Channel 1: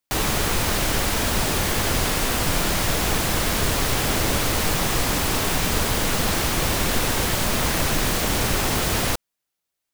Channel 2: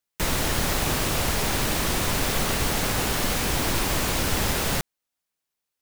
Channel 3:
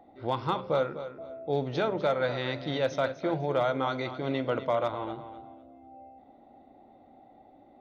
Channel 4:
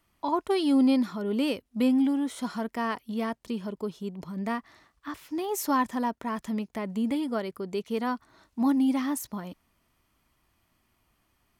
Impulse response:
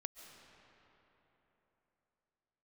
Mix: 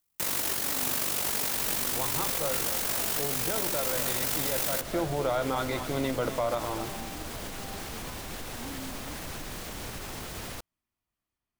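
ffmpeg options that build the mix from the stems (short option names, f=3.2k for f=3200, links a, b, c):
-filter_complex "[0:a]alimiter=limit=-14.5dB:level=0:latency=1:release=72,adelay=1450,volume=-14dB[a];[1:a]highpass=f=320:p=1,highshelf=f=7.3k:g=12,tremolo=f=48:d=0.621,volume=0.5dB[b];[2:a]adelay=1700,volume=1dB[c];[3:a]volume=-19.5dB[d];[a][b][c][d]amix=inputs=4:normalize=0,alimiter=limit=-18.5dB:level=0:latency=1:release=78"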